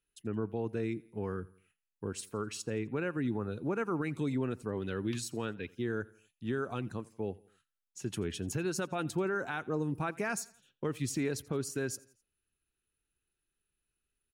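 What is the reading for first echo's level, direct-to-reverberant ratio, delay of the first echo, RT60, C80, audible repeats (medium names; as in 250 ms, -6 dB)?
-23.0 dB, no reverb, 85 ms, no reverb, no reverb, 2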